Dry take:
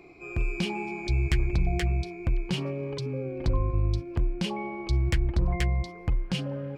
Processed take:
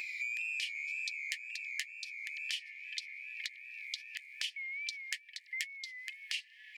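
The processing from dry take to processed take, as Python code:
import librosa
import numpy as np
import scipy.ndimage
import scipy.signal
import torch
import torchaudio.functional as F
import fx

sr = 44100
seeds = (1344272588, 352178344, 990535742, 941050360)

y = fx.wow_flutter(x, sr, seeds[0], rate_hz=2.1, depth_cents=86.0)
y = fx.brickwall_highpass(y, sr, low_hz=1700.0)
y = fx.band_squash(y, sr, depth_pct=100)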